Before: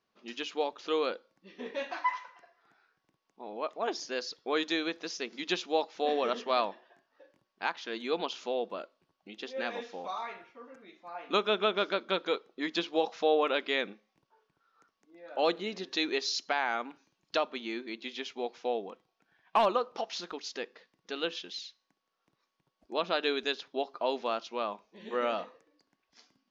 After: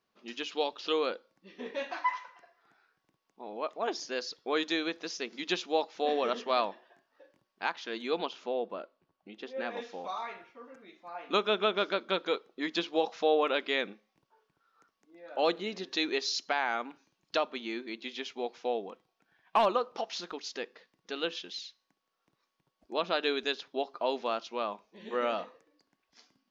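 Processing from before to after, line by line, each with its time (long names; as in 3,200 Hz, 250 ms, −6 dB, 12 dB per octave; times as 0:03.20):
0:00.52–0:00.92: gain on a spectral selection 2,500–5,700 Hz +7 dB
0:08.28–0:09.77: high-shelf EQ 3,300 Hz −11.5 dB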